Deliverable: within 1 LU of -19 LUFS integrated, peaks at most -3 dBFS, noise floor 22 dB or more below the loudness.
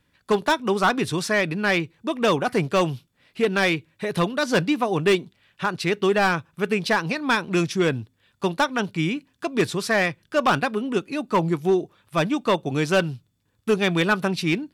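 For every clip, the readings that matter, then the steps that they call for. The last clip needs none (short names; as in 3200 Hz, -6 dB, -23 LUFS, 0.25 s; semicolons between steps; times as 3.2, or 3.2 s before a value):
clipped 1.1%; flat tops at -13.0 dBFS; loudness -23.0 LUFS; peak -13.0 dBFS; loudness target -19.0 LUFS
-> clip repair -13 dBFS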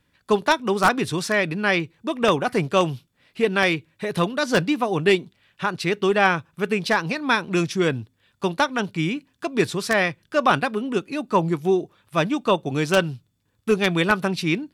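clipped 0.0%; loudness -22.5 LUFS; peak -4.0 dBFS; loudness target -19.0 LUFS
-> gain +3.5 dB; limiter -3 dBFS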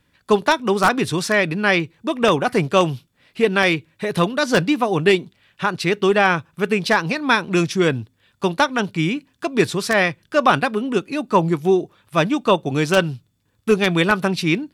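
loudness -19.0 LUFS; peak -3.0 dBFS; noise floor -66 dBFS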